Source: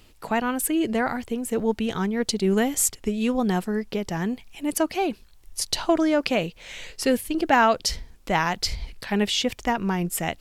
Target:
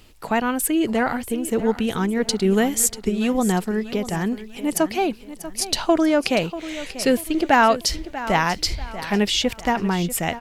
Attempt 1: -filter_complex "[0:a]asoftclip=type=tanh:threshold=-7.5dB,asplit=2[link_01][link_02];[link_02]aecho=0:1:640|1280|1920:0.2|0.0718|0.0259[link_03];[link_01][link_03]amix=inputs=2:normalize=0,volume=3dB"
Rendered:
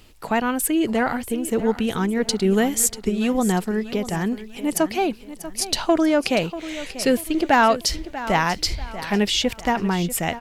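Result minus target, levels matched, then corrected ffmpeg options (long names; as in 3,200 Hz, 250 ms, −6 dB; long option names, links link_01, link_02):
soft clipping: distortion +12 dB
-filter_complex "[0:a]asoftclip=type=tanh:threshold=-1dB,asplit=2[link_01][link_02];[link_02]aecho=0:1:640|1280|1920:0.2|0.0718|0.0259[link_03];[link_01][link_03]amix=inputs=2:normalize=0,volume=3dB"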